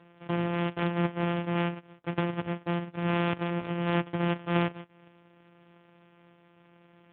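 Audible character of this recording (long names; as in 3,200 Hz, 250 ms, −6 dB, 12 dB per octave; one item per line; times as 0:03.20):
a buzz of ramps at a fixed pitch in blocks of 256 samples
AMR narrowband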